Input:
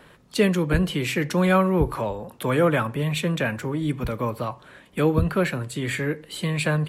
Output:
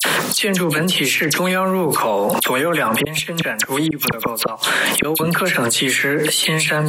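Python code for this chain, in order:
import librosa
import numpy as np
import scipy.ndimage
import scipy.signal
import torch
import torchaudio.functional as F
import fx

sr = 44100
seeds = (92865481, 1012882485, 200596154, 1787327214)

y = scipy.signal.sosfilt(scipy.signal.butter(6, 150.0, 'highpass', fs=sr, output='sos'), x)
y = fx.tilt_eq(y, sr, slope=2.5)
y = fx.gate_flip(y, sr, shuts_db=-20.0, range_db=-37, at=(2.96, 5.15))
y = fx.dispersion(y, sr, late='lows', ms=50.0, hz=2400.0)
y = fx.env_flatten(y, sr, amount_pct=100)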